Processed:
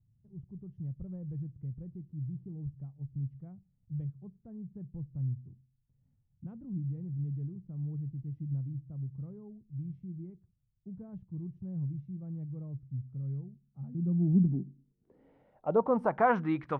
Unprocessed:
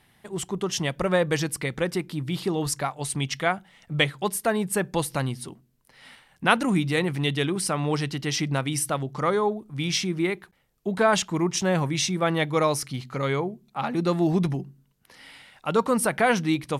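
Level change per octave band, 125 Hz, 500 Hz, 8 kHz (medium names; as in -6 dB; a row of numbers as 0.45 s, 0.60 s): -5.0 dB, -11.5 dB, under -40 dB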